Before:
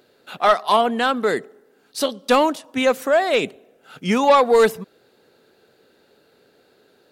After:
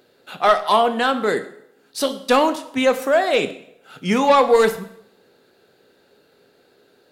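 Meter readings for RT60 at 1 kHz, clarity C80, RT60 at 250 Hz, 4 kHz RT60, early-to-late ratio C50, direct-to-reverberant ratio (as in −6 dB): 0.70 s, 16.0 dB, 0.65 s, 0.65 s, 13.5 dB, 9.0 dB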